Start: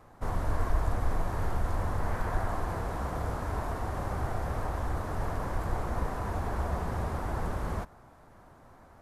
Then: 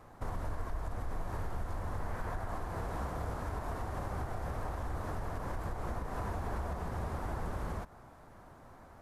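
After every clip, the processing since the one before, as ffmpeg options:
-filter_complex "[0:a]asplit=2[a][b];[b]acompressor=threshold=-35dB:ratio=6,volume=-0.5dB[c];[a][c]amix=inputs=2:normalize=0,alimiter=limit=-22.5dB:level=0:latency=1:release=168,volume=-5.5dB"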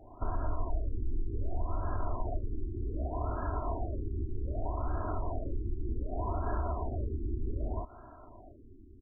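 -af "aecho=1:1:3:0.8,afftfilt=real='re*lt(b*sr/1024,390*pow(1700/390,0.5+0.5*sin(2*PI*0.65*pts/sr)))':imag='im*lt(b*sr/1024,390*pow(1700/390,0.5+0.5*sin(2*PI*0.65*pts/sr)))':win_size=1024:overlap=0.75,volume=1.5dB"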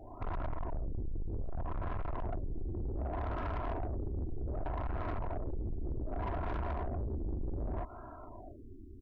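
-af "asoftclip=type=tanh:threshold=-36dB,volume=3.5dB"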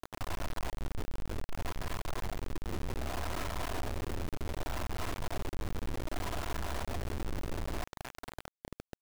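-af "acrusher=bits=4:dc=4:mix=0:aa=0.000001,volume=5dB"

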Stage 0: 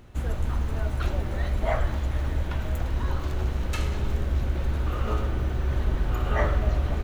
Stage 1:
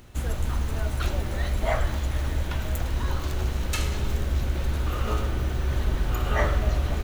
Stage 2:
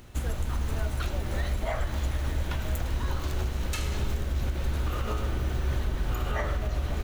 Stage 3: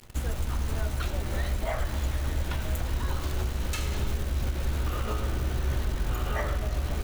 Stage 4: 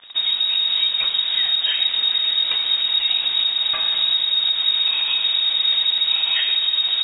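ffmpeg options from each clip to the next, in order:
-af "highshelf=f=3.3k:g=10"
-af "alimiter=limit=-19.5dB:level=0:latency=1:release=204"
-af "acrusher=bits=8:dc=4:mix=0:aa=0.000001"
-af "lowpass=f=3.2k:t=q:w=0.5098,lowpass=f=3.2k:t=q:w=0.6013,lowpass=f=3.2k:t=q:w=0.9,lowpass=f=3.2k:t=q:w=2.563,afreqshift=-3800,volume=8dB"

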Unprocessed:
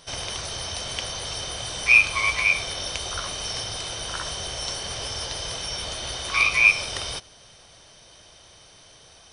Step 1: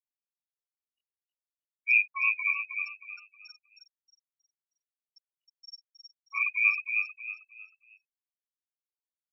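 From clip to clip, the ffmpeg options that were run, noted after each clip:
-filter_complex "[0:a]afftfilt=real='re*gte(hypot(re,im),0.224)':imag='im*gte(hypot(re,im),0.224)':win_size=1024:overlap=0.75,asplit=2[a][b];[b]asplit=4[c][d][e][f];[c]adelay=315,afreqshift=38,volume=-5dB[g];[d]adelay=630,afreqshift=76,volume=-14.9dB[h];[e]adelay=945,afreqshift=114,volume=-24.8dB[i];[f]adelay=1260,afreqshift=152,volume=-34.7dB[j];[g][h][i][j]amix=inputs=4:normalize=0[k];[a][k]amix=inputs=2:normalize=0,afftfilt=real='re*eq(mod(floor(b*sr/1024/740),2),1)':imag='im*eq(mod(floor(b*sr/1024/740),2),1)':win_size=1024:overlap=0.75,volume=-7.5dB"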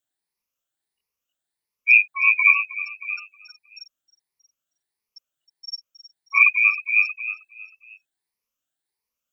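-af "afftfilt=real='re*pow(10,11/40*sin(2*PI*(0.85*log(max(b,1)*sr/1024/100)/log(2)-(1.5)*(pts-256)/sr)))':imag='im*pow(10,11/40*sin(2*PI*(0.85*log(max(b,1)*sr/1024/100)/log(2)-(1.5)*(pts-256)/sr)))':win_size=1024:overlap=0.75,volume=9dB"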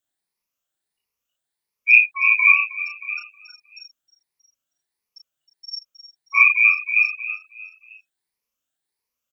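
-filter_complex "[0:a]asplit=2[a][b];[b]adelay=35,volume=-3.5dB[c];[a][c]amix=inputs=2:normalize=0"

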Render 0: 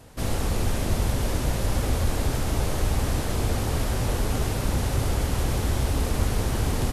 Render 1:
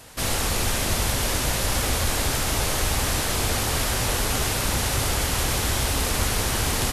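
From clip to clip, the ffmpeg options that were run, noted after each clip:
-af "tiltshelf=f=820:g=-6.5,volume=4dB"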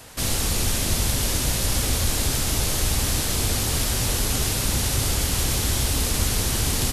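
-filter_complex "[0:a]acrossover=split=380|3000[a][b][c];[b]acompressor=threshold=-49dB:ratio=1.5[d];[a][d][c]amix=inputs=3:normalize=0,volume=2dB"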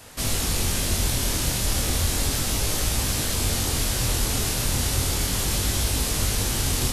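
-af "flanger=delay=19.5:depth=6:speed=0.34,volume=2dB"

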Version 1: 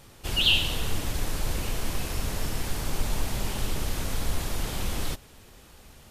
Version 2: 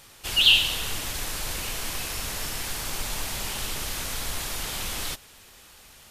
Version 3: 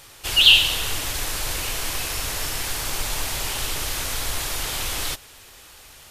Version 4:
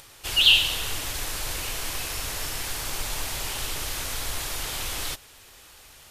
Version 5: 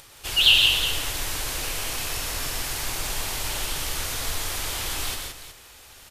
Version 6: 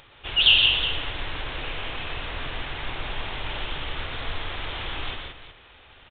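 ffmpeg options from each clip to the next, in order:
-af "tiltshelf=f=730:g=-6.5,volume=-1dB"
-af "equalizer=f=200:t=o:w=0.3:g=-12,volume=4.5dB"
-af "acompressor=mode=upward:threshold=-43dB:ratio=2.5,volume=-4dB"
-af "aecho=1:1:124|170|368:0.473|0.531|0.251"
-af "aresample=8000,aresample=44100"

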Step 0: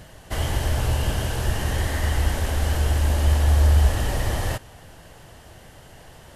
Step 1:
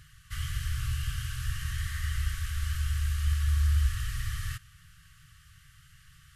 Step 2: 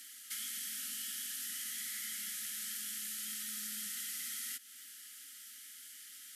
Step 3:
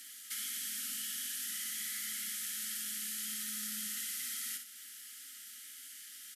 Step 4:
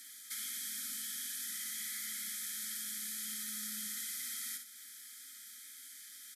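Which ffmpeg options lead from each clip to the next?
-af "afftfilt=real='re*(1-between(b*sr/4096,170,1100))':imag='im*(1-between(b*sr/4096,170,1100))':win_size=4096:overlap=0.75,volume=-8.5dB"
-af "aderivative,afreqshift=140,acompressor=threshold=-55dB:ratio=2.5,volume=12.5dB"
-af "aecho=1:1:61|122|183|244:0.447|0.161|0.0579|0.0208,volume=1dB"
-af "asuperstop=centerf=2800:order=8:qfactor=5.5,volume=-1.5dB"

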